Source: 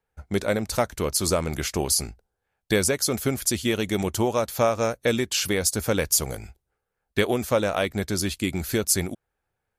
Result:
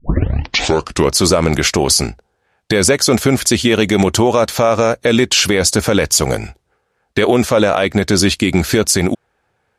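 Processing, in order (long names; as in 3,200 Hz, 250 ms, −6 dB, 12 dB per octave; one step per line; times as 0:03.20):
turntable start at the beginning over 1.13 s
high-pass filter 130 Hz 6 dB per octave
high-frequency loss of the air 58 metres
boost into a limiter +18.5 dB
level −1 dB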